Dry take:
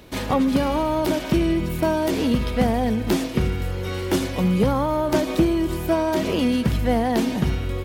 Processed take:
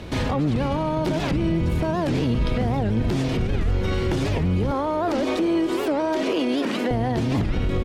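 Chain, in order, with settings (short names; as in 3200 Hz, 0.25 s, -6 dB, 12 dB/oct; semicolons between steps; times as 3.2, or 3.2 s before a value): octaver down 1 oct, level +1 dB; 4.71–6.91 steep high-pass 250 Hz 36 dB/oct; compressor, threshold -22 dBFS, peak gain reduction 10 dB; limiter -23.5 dBFS, peak gain reduction 11 dB; air absorption 60 m; feedback echo 0.499 s, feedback 57%, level -19 dB; record warp 78 rpm, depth 250 cents; gain +8.5 dB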